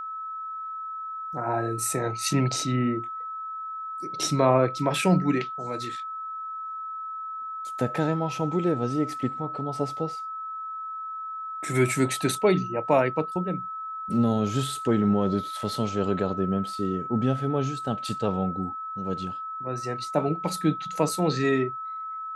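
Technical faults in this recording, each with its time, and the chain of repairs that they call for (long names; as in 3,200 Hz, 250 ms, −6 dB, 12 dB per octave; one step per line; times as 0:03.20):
whistle 1,300 Hz −32 dBFS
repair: notch filter 1,300 Hz, Q 30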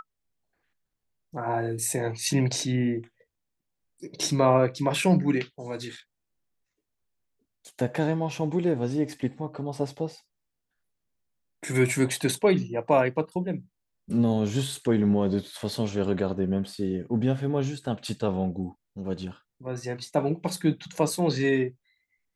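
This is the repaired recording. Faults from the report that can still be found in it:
none of them is left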